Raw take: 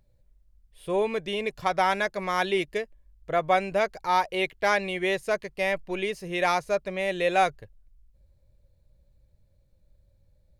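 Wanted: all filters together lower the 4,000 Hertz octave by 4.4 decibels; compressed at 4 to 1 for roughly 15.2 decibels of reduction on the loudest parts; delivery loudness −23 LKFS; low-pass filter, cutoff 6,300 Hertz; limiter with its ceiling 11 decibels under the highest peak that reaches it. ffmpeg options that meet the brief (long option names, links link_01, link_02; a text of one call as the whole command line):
ffmpeg -i in.wav -af "lowpass=6300,equalizer=frequency=4000:width_type=o:gain=-5.5,acompressor=threshold=-37dB:ratio=4,volume=22dB,alimiter=limit=-13dB:level=0:latency=1" out.wav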